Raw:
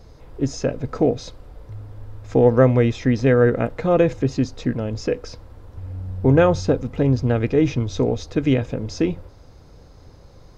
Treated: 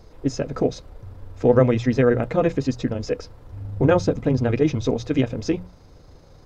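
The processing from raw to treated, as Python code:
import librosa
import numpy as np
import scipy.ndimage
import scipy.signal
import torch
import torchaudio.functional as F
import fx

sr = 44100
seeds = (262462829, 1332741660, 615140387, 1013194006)

y = fx.stretch_grains(x, sr, factor=0.61, grain_ms=77.0)
y = fx.hum_notches(y, sr, base_hz=60, count=3)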